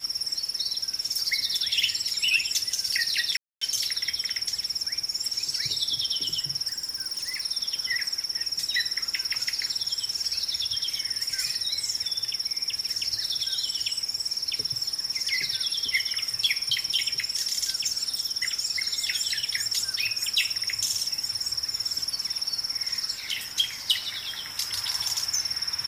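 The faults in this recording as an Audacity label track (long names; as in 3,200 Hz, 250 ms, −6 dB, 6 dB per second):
3.370000	3.610000	drop-out 244 ms
6.680000	7.410000	clipping −26.5 dBFS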